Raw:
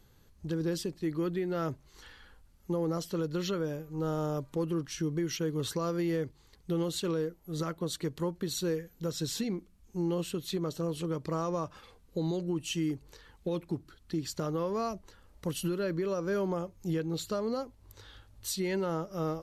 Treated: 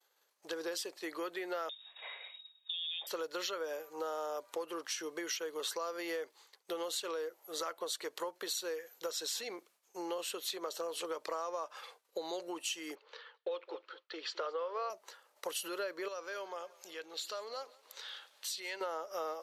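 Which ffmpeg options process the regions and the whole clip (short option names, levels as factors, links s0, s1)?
-filter_complex "[0:a]asettb=1/sr,asplit=3[s0][s1][s2];[s0]atrim=end=1.694[s3];[s1]atrim=start=1.69:end=3.07,asetpts=PTS-STARTPTS,afade=t=in:d=0.004:c=qsin,afade=t=out:st=1.376:d=0.004:c=qsin,aemphasis=mode=production:type=50fm,lowpass=f=3200:t=q:w=0.5098,lowpass=f=3200:t=q:w=0.6013,lowpass=f=3200:t=q:w=0.9,lowpass=f=3200:t=q:w=2.563,afreqshift=-3800,acompressor=threshold=0.01:ratio=6:attack=3.2:release=140:knee=1:detection=peak[s4];[s2]atrim=start=3.066[s5];[s3][s4]acrossfade=d=0.004:c1=hsin:c2=qsin[s6];[s6][s5]acrossfade=d=0.004:c1=qsin:c2=hsin,asettb=1/sr,asplit=3[s7][s8][s9];[s7]atrim=end=12.954[s10];[s8]atrim=start=12.95:end=14.9,asetpts=PTS-STARTPTS,afade=t=in:d=0.004:c=qsin,afade=t=out:st=1.946:d=0.004:c=qsin,highpass=440,equalizer=f=480:t=q:w=4:g=8,equalizer=f=740:t=q:w=4:g=-5,equalizer=f=1300:t=q:w=4:g=4,equalizer=f=3100:t=q:w=4:g=3,lowpass=f=4100:w=0.5412,lowpass=f=4100:w=1.3066,aecho=1:1:213|426:0.126|0.0252,atrim=end_sample=85995[s11];[s9]atrim=start=14.896[s12];[s10][s11]acrossfade=d=0.004:c1=hsin:c2=qsin[s13];[s13][s12]acrossfade=d=0.004:c1=qsin:c2=hsin,asettb=1/sr,asplit=3[s14][s15][s16];[s14]atrim=end=16.084[s17];[s15]atrim=start=16.08:end=18.81,asetpts=PTS-STARTPTS,afade=t=in:d=0.004:c=qsin,afade=t=out:st=2.726:d=0.004:c=qsin,equalizer=f=3200:w=0.57:g=9,acompressor=threshold=0.00251:ratio=2:attack=3.2:release=140:knee=1:detection=peak,aecho=1:1:179|358|537|716|895:0.0891|0.0517|0.03|0.0174|0.0101,atrim=end_sample=120393[s18];[s16]atrim=start=18.806[s19];[s17][s18]acrossfade=d=0.004:c1=hsin:c2=qsin[s20];[s20][s19]acrossfade=d=0.004:c1=qsin:c2=hsin,agate=range=0.0224:threshold=0.00251:ratio=3:detection=peak,highpass=f=530:w=0.5412,highpass=f=530:w=1.3066,acompressor=threshold=0.00794:ratio=6,volume=2.11"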